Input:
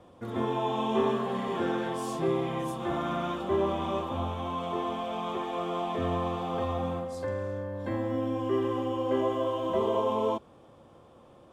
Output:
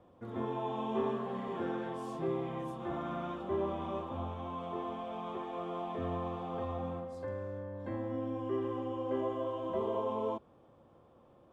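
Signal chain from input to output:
high-shelf EQ 3,200 Hz −11.5 dB
level −6.5 dB

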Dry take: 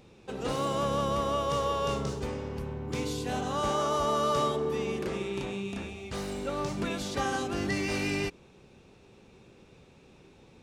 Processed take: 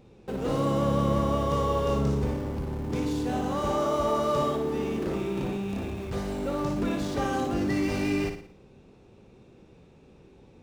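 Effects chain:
in parallel at −8.5 dB: comparator with hysteresis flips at −41 dBFS
on the sum: tilt shelving filter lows +4.5 dB
flutter between parallel walls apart 9.8 metres, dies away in 0.49 s
level −2 dB

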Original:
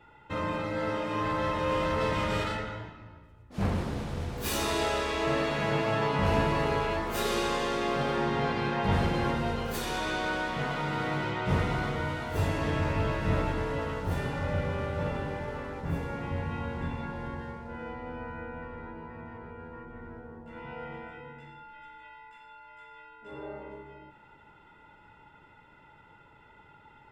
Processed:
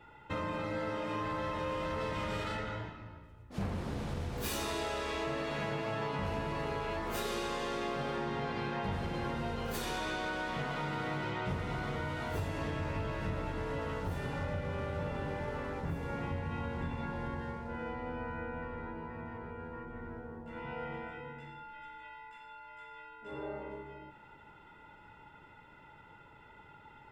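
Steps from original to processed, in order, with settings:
downward compressor, threshold −33 dBFS, peak gain reduction 12 dB

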